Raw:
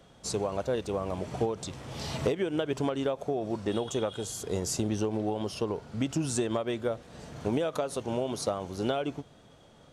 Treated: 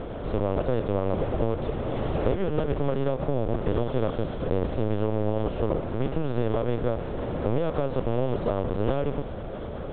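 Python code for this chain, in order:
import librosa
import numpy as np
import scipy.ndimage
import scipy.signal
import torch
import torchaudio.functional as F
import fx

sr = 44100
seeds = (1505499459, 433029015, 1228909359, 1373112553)

y = fx.bin_compress(x, sr, power=0.4)
y = fx.lpc_vocoder(y, sr, seeds[0], excitation='pitch_kept', order=10)
y = fx.lowpass(y, sr, hz=1100.0, slope=6)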